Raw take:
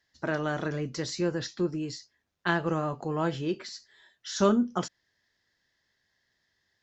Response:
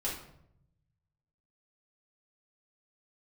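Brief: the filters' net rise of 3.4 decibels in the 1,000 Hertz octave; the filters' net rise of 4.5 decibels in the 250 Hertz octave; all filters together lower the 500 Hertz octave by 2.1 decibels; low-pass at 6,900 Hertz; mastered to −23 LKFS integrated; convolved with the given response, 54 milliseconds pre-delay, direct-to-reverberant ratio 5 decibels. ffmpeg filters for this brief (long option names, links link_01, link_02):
-filter_complex "[0:a]lowpass=6900,equalizer=frequency=250:width_type=o:gain=8,equalizer=frequency=500:width_type=o:gain=-8,equalizer=frequency=1000:width_type=o:gain=6,asplit=2[link_01][link_02];[1:a]atrim=start_sample=2205,adelay=54[link_03];[link_02][link_03]afir=irnorm=-1:irlink=0,volume=-9dB[link_04];[link_01][link_04]amix=inputs=2:normalize=0,volume=3dB"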